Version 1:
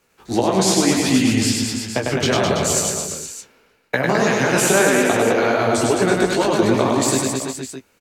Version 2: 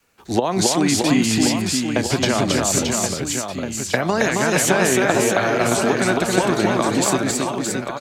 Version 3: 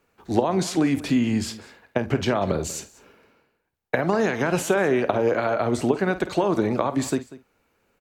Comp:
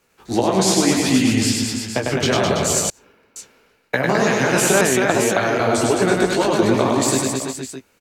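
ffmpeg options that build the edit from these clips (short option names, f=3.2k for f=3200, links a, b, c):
-filter_complex "[0:a]asplit=3[a][b][c];[a]atrim=end=2.902[d];[2:a]atrim=start=2.898:end=3.362[e];[b]atrim=start=3.358:end=4.812[f];[1:a]atrim=start=4.808:end=5.602[g];[c]atrim=start=5.598[h];[d][e]acrossfade=d=0.004:c1=hsin:c2=hsin[i];[i][f]acrossfade=d=0.004:c1=hsin:c2=hsin[j];[j][g]acrossfade=d=0.004:c1=hsin:c2=hsin[k];[k][h]acrossfade=d=0.004:c1=hsin:c2=hsin"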